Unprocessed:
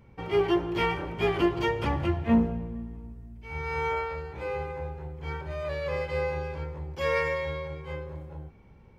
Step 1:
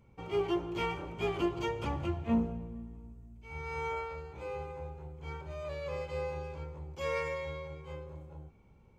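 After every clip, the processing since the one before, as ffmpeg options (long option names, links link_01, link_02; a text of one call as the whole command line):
ffmpeg -i in.wav -af "superequalizer=11b=0.501:15b=2,volume=-7dB" out.wav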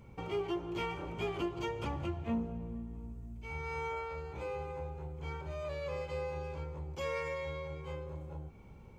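ffmpeg -i in.wav -af "acompressor=threshold=-50dB:ratio=2,volume=7.5dB" out.wav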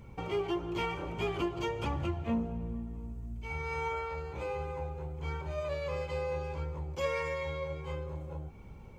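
ffmpeg -i in.wav -af "flanger=delay=0.5:depth=1.5:regen=78:speed=1.5:shape=triangular,volume=8dB" out.wav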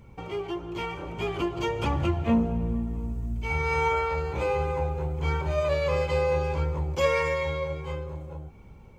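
ffmpeg -i in.wav -af "dynaudnorm=framelen=270:gausssize=13:maxgain=10dB" out.wav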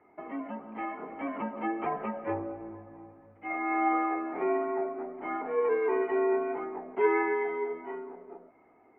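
ffmpeg -i in.wav -af "highpass=frequency=440:width_type=q:width=0.5412,highpass=frequency=440:width_type=q:width=1.307,lowpass=frequency=2100:width_type=q:width=0.5176,lowpass=frequency=2100:width_type=q:width=0.7071,lowpass=frequency=2100:width_type=q:width=1.932,afreqshift=-130" out.wav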